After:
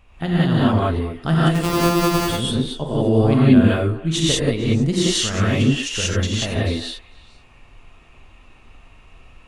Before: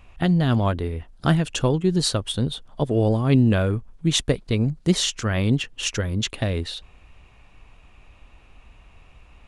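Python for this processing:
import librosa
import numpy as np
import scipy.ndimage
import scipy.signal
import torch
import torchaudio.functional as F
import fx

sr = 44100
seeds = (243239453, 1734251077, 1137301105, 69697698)

y = fx.sample_sort(x, sr, block=256, at=(1.48, 2.24), fade=0.02)
y = fx.echo_stepped(y, sr, ms=113, hz=340.0, octaves=1.4, feedback_pct=70, wet_db=-11.0)
y = fx.rev_gated(y, sr, seeds[0], gate_ms=210, shape='rising', drr_db=-7.5)
y = F.gain(torch.from_numpy(y), -4.0).numpy()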